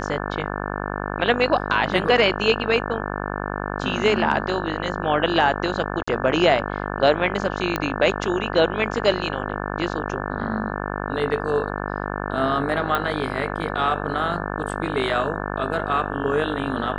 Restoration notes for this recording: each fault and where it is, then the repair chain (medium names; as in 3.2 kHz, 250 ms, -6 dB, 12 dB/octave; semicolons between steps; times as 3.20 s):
buzz 50 Hz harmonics 35 -28 dBFS
6.03–6.08 s: dropout 45 ms
7.76 s: pop -8 dBFS
12.95 s: pop -10 dBFS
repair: de-click; de-hum 50 Hz, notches 35; interpolate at 6.03 s, 45 ms